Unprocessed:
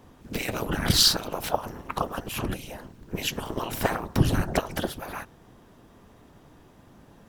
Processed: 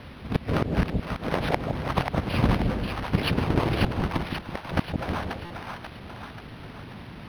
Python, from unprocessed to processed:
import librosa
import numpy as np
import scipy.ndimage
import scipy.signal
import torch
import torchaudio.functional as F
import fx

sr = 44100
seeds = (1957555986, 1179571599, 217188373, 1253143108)

y = fx.halfwave_hold(x, sr)
y = scipy.signal.sosfilt(scipy.signal.butter(2, 49.0, 'highpass', fs=sr, output='sos'), y)
y = fx.bass_treble(y, sr, bass_db=6, treble_db=-3)
y = fx.gate_flip(y, sr, shuts_db=-11.0, range_db=-38)
y = fx.quant_companded(y, sr, bits=4)
y = fx.echo_split(y, sr, split_hz=690.0, low_ms=164, high_ms=536, feedback_pct=52, wet_db=-4.0)
y = fx.quant_dither(y, sr, seeds[0], bits=8, dither='triangular')
y = fx.buffer_glitch(y, sr, at_s=(5.45,), block=256, repeats=8)
y = np.interp(np.arange(len(y)), np.arange(len(y))[::6], y[::6])